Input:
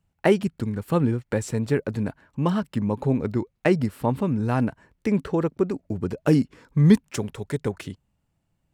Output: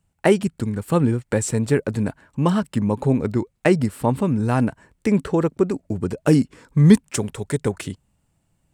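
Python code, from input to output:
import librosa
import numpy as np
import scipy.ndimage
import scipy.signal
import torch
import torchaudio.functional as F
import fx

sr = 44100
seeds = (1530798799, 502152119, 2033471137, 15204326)

p1 = fx.peak_eq(x, sr, hz=8400.0, db=9.0, octaves=0.55)
p2 = fx.rider(p1, sr, range_db=10, speed_s=2.0)
p3 = p1 + (p2 * 10.0 ** (-1.0 / 20.0))
y = p3 * 10.0 ** (-2.5 / 20.0)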